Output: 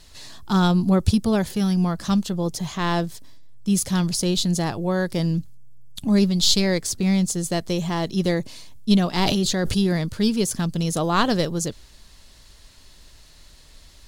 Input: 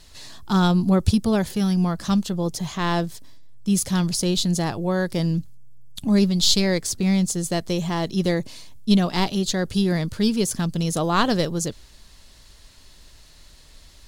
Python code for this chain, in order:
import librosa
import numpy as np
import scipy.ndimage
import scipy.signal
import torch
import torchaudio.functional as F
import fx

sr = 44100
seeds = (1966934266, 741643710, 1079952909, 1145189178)

y = fx.sustainer(x, sr, db_per_s=22.0, at=(9.19, 9.87))